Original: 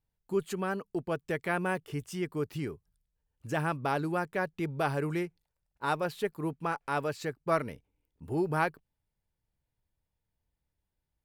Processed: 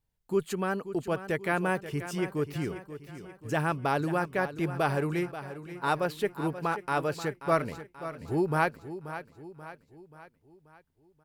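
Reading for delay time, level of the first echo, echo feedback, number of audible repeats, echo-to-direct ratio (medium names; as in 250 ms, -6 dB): 533 ms, -12.5 dB, 49%, 4, -11.5 dB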